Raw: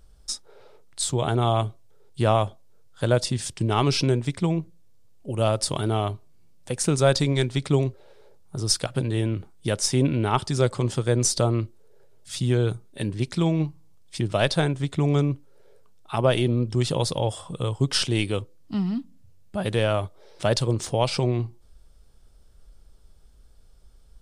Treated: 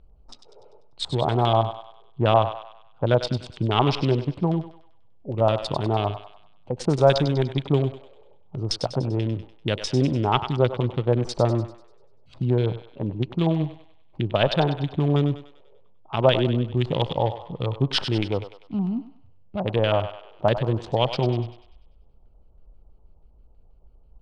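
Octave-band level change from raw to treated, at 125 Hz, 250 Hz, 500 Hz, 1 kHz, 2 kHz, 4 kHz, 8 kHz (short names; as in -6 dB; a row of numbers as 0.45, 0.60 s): 0.0, +0.5, +2.0, +3.5, -1.0, -0.5, -15.5 dB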